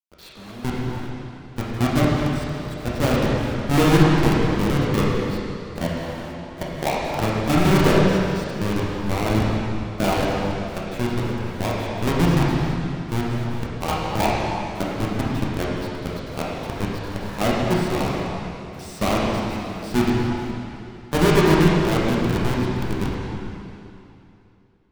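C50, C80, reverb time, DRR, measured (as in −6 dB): −2.5 dB, −1.0 dB, 2.8 s, −5.5 dB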